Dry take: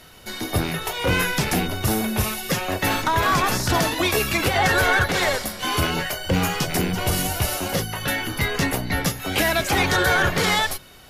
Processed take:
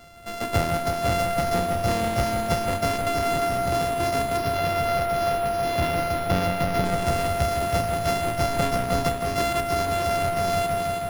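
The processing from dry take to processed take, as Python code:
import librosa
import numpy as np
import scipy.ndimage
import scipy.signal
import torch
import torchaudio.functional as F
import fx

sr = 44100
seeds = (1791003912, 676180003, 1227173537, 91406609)

y = np.r_[np.sort(x[:len(x) // 64 * 64].reshape(-1, 64), axis=1).ravel(), x[len(x) // 64 * 64:]]
y = fx.peak_eq(y, sr, hz=7900.0, db=-14.5, octaves=0.43, at=(4.37, 6.85))
y = fx.echo_heads(y, sr, ms=161, heads='first and second', feedback_pct=66, wet_db=-8)
y = fx.rider(y, sr, range_db=10, speed_s=0.5)
y = fx.high_shelf(y, sr, hz=5700.0, db=-6.0)
y = y * librosa.db_to_amplitude(-4.5)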